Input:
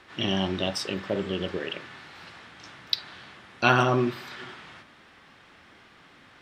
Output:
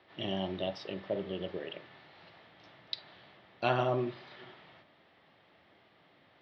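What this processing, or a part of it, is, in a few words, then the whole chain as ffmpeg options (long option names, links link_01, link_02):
car door speaker: -af "lowpass=frequency=4500:width=0.5412,lowpass=frequency=4500:width=1.3066,highpass=96,equalizer=frequency=240:width_type=q:width=4:gain=-5,equalizer=frequency=630:width_type=q:width=4:gain=6,equalizer=frequency=1100:width_type=q:width=4:gain=-4,equalizer=frequency=1500:width_type=q:width=4:gain=-8,equalizer=frequency=2500:width_type=q:width=4:gain=-4,equalizer=frequency=6900:width_type=q:width=4:gain=-6,lowpass=frequency=8700:width=0.5412,lowpass=frequency=8700:width=1.3066,highshelf=frequency=5400:gain=-5.5,volume=-7.5dB"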